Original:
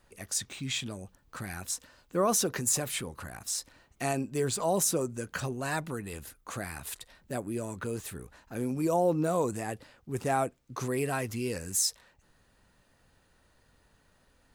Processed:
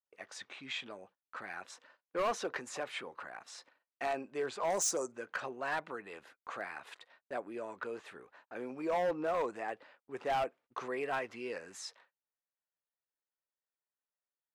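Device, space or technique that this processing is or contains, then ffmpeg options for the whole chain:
walkie-talkie: -filter_complex "[0:a]asettb=1/sr,asplit=3[s0][s1][s2];[s0]atrim=end=4.704[s3];[s1]atrim=start=4.7:end=5.12,asetpts=PTS-STARTPTS,afade=t=in:d=0.004:c=qsin,afade=t=out:st=0.416:d=0.004:c=qsin,highshelf=f=4500:t=q:w=3:g=13.5[s4];[s2]atrim=start=5.116[s5];[s3][s4]acrossfade=d=0.004:c1=hsin:c2=qsin[s6];[s6][s5]acrossfade=d=0.004:c1=qsin:c2=hsin,highpass=530,lowpass=2400,asoftclip=type=hard:threshold=0.0398,agate=range=0.0224:threshold=0.00112:ratio=16:detection=peak"

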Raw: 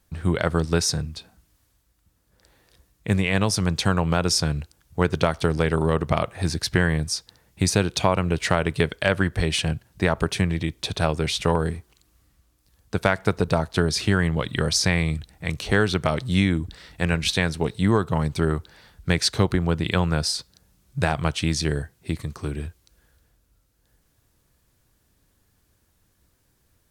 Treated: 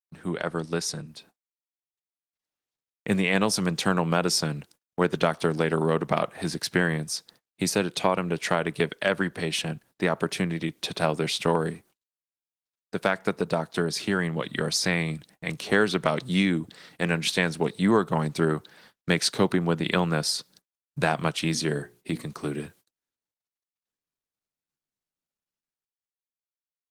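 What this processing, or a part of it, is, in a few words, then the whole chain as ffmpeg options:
video call: -filter_complex "[0:a]asettb=1/sr,asplit=3[s0][s1][s2];[s0]atrim=end=21.364[s3];[s1]atrim=start=21.36:end=22.24,asetpts=PTS-STARTPTS,afade=t=in:d=0.004:c=qsin,afade=t=out:st=0.876:d=0.004:c=qsin,bandreject=f=60:t=h:w=6,bandreject=f=120:t=h:w=6,bandreject=f=180:t=h:w=6,bandreject=f=240:t=h:w=6,bandreject=f=300:t=h:w=6,bandreject=f=360:t=h:w=6,bandreject=f=420:t=h:w=6,bandreject=f=480:t=h:w=6,bandreject=f=540:t=h:w=6[s4];[s2]atrim=start=22.236[s5];[s3][s4]acrossfade=d=0.004:c1=hsin:c2=qsin[s6];[s6][s5]acrossfade=d=0.004:c1=qsin:c2=hsin,highpass=f=160:w=0.5412,highpass=f=160:w=1.3066,dynaudnorm=f=340:g=9:m=4.73,agate=range=0.0126:threshold=0.00501:ratio=16:detection=peak,volume=0.531" -ar 48000 -c:a libopus -b:a 20k

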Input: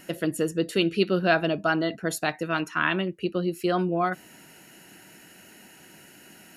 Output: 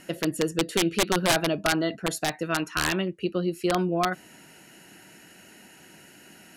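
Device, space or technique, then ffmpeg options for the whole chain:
overflowing digital effects unit: -af "aeval=exprs='(mod(5.31*val(0)+1,2)-1)/5.31':c=same,lowpass=12000"

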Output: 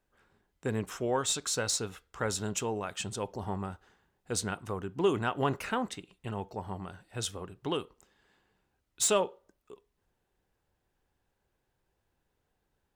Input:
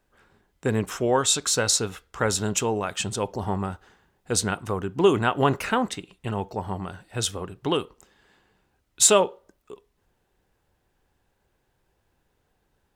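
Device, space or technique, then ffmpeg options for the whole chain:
saturation between pre-emphasis and de-emphasis: -af "highshelf=f=2600:g=10.5,asoftclip=type=tanh:threshold=0.708,highshelf=f=2600:g=-10.5,volume=0.398"

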